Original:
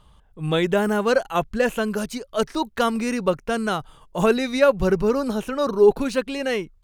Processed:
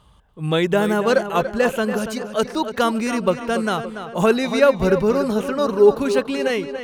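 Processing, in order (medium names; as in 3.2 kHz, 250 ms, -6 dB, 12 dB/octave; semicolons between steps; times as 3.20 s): high-pass 43 Hz; on a send: tape echo 285 ms, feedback 54%, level -9 dB, low-pass 3.8 kHz; on the sum: trim +2 dB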